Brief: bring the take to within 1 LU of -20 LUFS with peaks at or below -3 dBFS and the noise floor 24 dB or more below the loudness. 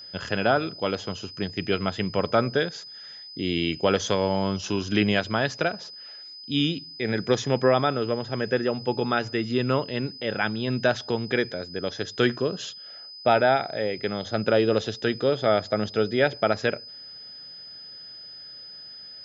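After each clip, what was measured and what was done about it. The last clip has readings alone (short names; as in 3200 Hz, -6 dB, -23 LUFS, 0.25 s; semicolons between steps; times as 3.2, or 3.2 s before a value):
steady tone 5000 Hz; tone level -40 dBFS; loudness -25.5 LUFS; peak -7.5 dBFS; loudness target -20.0 LUFS
-> notch 5000 Hz, Q 30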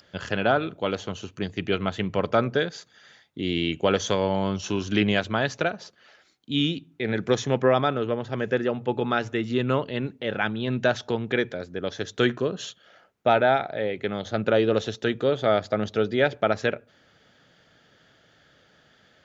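steady tone none; loudness -25.5 LUFS; peak -7.5 dBFS; loudness target -20.0 LUFS
-> gain +5.5 dB; limiter -3 dBFS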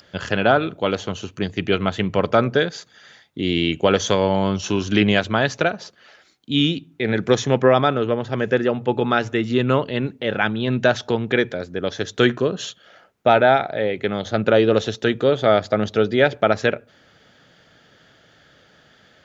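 loudness -20.0 LUFS; peak -3.0 dBFS; noise floor -55 dBFS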